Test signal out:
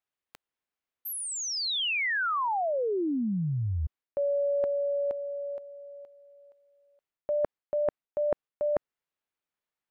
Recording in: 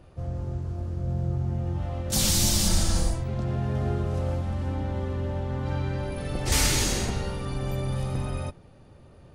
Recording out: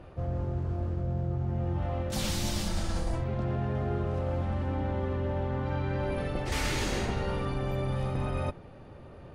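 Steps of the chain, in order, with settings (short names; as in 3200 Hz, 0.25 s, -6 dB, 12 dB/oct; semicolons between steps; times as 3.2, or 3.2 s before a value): tone controls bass -4 dB, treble -13 dB; reverse; compressor 6:1, threshold -33 dBFS; reverse; gain +6 dB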